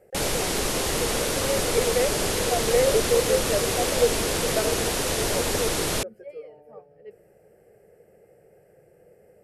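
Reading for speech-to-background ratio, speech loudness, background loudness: −3.0 dB, −27.5 LKFS, −24.5 LKFS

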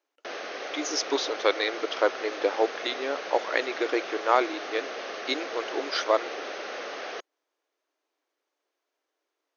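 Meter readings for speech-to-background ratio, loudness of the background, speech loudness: 7.5 dB, −36.0 LKFS, −28.5 LKFS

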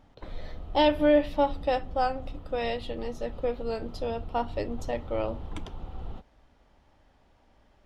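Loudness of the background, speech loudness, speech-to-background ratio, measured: −43.5 LKFS, −29.0 LKFS, 14.5 dB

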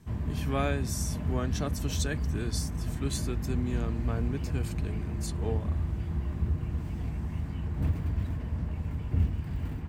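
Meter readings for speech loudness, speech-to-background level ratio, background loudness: −35.5 LKFS, −2.5 dB, −33.0 LKFS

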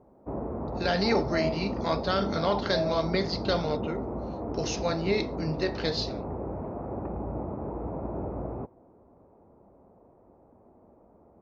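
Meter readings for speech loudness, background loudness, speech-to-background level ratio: −29.5 LKFS, −34.5 LKFS, 5.0 dB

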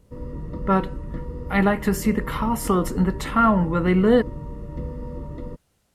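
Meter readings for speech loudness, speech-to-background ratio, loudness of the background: −21.5 LKFS, 13.0 dB, −34.5 LKFS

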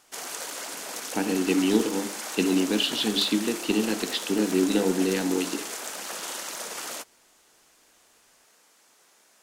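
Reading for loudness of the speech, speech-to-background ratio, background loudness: −25.5 LKFS, 8.0 dB, −33.5 LKFS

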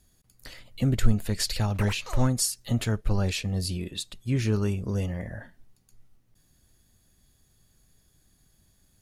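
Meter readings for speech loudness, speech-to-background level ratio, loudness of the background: −28.0 LKFS, 14.0 dB, −42.0 LKFS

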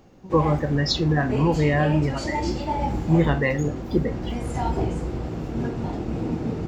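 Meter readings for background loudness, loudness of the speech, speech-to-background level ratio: −29.0 LKFS, −23.5 LKFS, 5.5 dB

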